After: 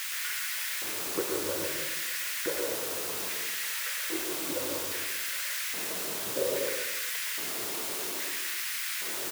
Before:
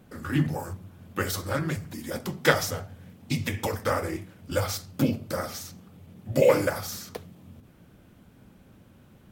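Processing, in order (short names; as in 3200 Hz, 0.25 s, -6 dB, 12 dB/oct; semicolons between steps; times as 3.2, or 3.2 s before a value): HPF 120 Hz 12 dB/oct; tilt -3.5 dB/oct; comb 2 ms, depth 62%; compressor 5:1, threshold -34 dBFS, peak gain reduction 23.5 dB; tremolo 6.7 Hz, depth 50%; requantised 6-bit, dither triangular; LFO high-pass square 0.61 Hz 340–1800 Hz; echo 0.259 s -14 dB; on a send at -1.5 dB: reverb RT60 0.70 s, pre-delay 0.11 s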